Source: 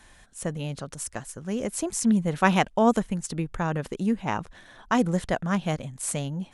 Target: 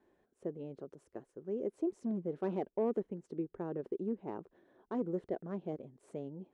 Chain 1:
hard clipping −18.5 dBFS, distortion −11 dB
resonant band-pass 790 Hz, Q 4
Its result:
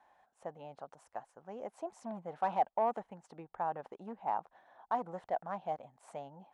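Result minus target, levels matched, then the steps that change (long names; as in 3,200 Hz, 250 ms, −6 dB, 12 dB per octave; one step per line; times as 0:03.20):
1,000 Hz band +13.5 dB
change: resonant band-pass 380 Hz, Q 4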